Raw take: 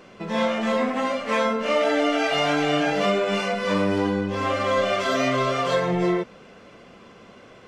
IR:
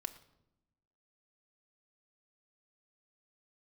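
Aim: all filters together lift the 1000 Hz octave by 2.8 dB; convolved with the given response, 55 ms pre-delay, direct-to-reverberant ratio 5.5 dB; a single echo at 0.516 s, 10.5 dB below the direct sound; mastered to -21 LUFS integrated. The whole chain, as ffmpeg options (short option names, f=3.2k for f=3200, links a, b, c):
-filter_complex "[0:a]equalizer=f=1k:t=o:g=3.5,aecho=1:1:516:0.299,asplit=2[a][b];[1:a]atrim=start_sample=2205,adelay=55[c];[b][c]afir=irnorm=-1:irlink=0,volume=-3.5dB[d];[a][d]amix=inputs=2:normalize=0,volume=-0.5dB"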